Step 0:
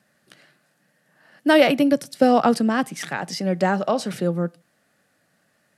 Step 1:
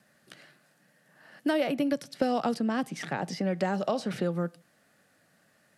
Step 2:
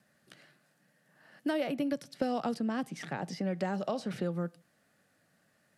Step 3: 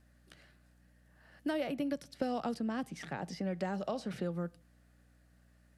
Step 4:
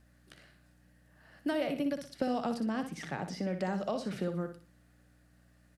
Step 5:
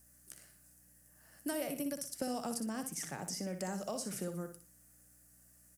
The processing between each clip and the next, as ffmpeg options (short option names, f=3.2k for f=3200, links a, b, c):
-filter_complex "[0:a]acrossover=split=840|2700|6000[a][b][c][d];[a]acompressor=threshold=-27dB:ratio=4[e];[b]acompressor=threshold=-39dB:ratio=4[f];[c]acompressor=threshold=-46dB:ratio=4[g];[d]acompressor=threshold=-56dB:ratio=4[h];[e][f][g][h]amix=inputs=4:normalize=0"
-af "lowshelf=f=190:g=4,volume=-5.5dB"
-af "aeval=exprs='val(0)+0.000891*(sin(2*PI*60*n/s)+sin(2*PI*2*60*n/s)/2+sin(2*PI*3*60*n/s)/3+sin(2*PI*4*60*n/s)/4+sin(2*PI*5*60*n/s)/5)':c=same,volume=-3dB"
-af "aecho=1:1:60|120|180|240:0.376|0.117|0.0361|0.0112,volume=2dB"
-af "aexciter=amount=12.8:drive=3.5:freq=5.7k,volume=-6dB"